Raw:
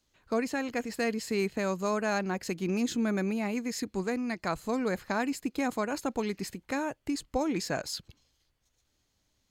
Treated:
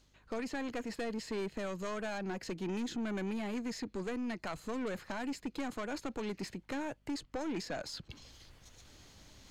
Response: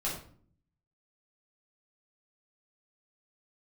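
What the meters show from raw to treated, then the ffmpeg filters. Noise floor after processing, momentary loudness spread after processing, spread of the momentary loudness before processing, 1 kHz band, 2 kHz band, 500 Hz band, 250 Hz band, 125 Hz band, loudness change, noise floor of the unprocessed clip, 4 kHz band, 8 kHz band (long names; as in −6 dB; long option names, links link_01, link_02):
−67 dBFS, 18 LU, 5 LU, −8.5 dB, −8.0 dB, −7.5 dB, −7.0 dB, −7.0 dB, −7.5 dB, −75 dBFS, −5.5 dB, −9.5 dB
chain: -filter_complex "[0:a]highshelf=frequency=10000:gain=-10.5,acrossover=split=160|1800|6000[link_01][link_02][link_03][link_04];[link_01]acompressor=threshold=-51dB:ratio=4[link_05];[link_02]acompressor=threshold=-30dB:ratio=4[link_06];[link_03]acompressor=threshold=-44dB:ratio=4[link_07];[link_04]acompressor=threshold=-57dB:ratio=4[link_08];[link_05][link_06][link_07][link_08]amix=inputs=4:normalize=0,aeval=exprs='(tanh(39.8*val(0)+0.25)-tanh(0.25))/39.8':channel_layout=same,areverse,acompressor=mode=upward:threshold=-40dB:ratio=2.5,areverse,aeval=exprs='val(0)+0.000355*(sin(2*PI*50*n/s)+sin(2*PI*2*50*n/s)/2+sin(2*PI*3*50*n/s)/3+sin(2*PI*4*50*n/s)/4+sin(2*PI*5*50*n/s)/5)':channel_layout=same"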